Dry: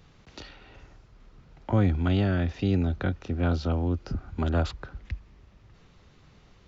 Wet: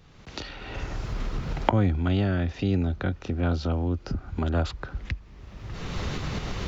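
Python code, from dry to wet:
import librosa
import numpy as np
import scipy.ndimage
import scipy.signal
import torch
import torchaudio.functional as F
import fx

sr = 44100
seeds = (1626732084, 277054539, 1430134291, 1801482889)

y = fx.recorder_agc(x, sr, target_db=-21.5, rise_db_per_s=30.0, max_gain_db=30)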